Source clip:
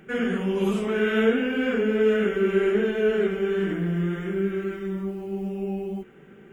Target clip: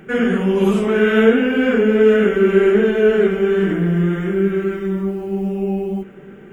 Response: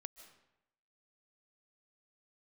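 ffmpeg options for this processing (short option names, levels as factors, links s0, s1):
-filter_complex "[0:a]asplit=2[s0][s1];[1:a]atrim=start_sample=2205,asetrate=23373,aresample=44100,lowpass=2400[s2];[s1][s2]afir=irnorm=-1:irlink=0,volume=0.447[s3];[s0][s3]amix=inputs=2:normalize=0,volume=2"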